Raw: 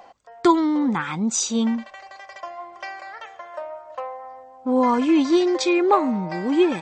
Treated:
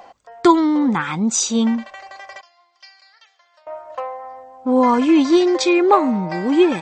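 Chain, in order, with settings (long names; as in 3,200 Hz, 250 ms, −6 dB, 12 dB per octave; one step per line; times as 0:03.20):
0:02.41–0:03.67: resonant band-pass 4,600 Hz, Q 3.5
level +4 dB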